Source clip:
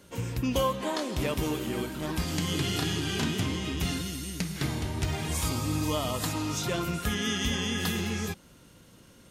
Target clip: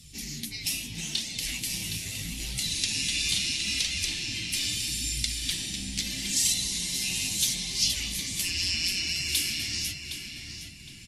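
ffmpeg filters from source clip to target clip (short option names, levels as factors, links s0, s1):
-filter_complex "[0:a]afftfilt=real='re*lt(hypot(re,im),0.1)':imag='im*lt(hypot(re,im),0.1)':win_size=1024:overlap=0.75,firequalizer=gain_entry='entry(150,0);entry(300,-5);entry(530,-23);entry(890,-24);entry(1600,-27);entry(2300,-7);entry(4500,5)':delay=0.05:min_phase=1,asetrate=37044,aresample=44100,flanger=delay=1.4:depth=9.6:regen=6:speed=0.76:shape=sinusoidal,asplit=2[s0][s1];[s1]adelay=764,lowpass=f=3800:p=1,volume=0.501,asplit=2[s2][s3];[s3]adelay=764,lowpass=f=3800:p=1,volume=0.4,asplit=2[s4][s5];[s5]adelay=764,lowpass=f=3800:p=1,volume=0.4,asplit=2[s6][s7];[s7]adelay=764,lowpass=f=3800:p=1,volume=0.4,asplit=2[s8][s9];[s9]adelay=764,lowpass=f=3800:p=1,volume=0.4[s10];[s2][s4][s6][s8][s10]amix=inputs=5:normalize=0[s11];[s0][s11]amix=inputs=2:normalize=0,volume=2.66"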